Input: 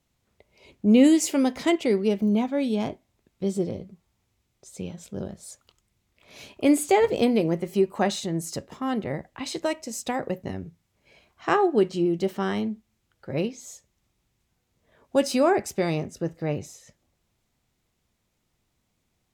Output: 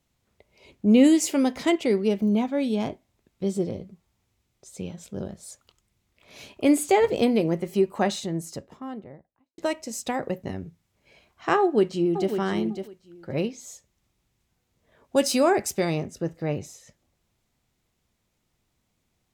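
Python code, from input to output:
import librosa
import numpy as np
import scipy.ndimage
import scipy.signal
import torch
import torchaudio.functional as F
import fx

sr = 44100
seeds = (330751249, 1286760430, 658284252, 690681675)

y = fx.studio_fade_out(x, sr, start_s=7.99, length_s=1.59)
y = fx.echo_throw(y, sr, start_s=11.6, length_s=0.72, ms=550, feedback_pct=15, wet_db=-8.5)
y = fx.high_shelf(y, sr, hz=4200.0, db=7.5, at=(15.16, 15.85))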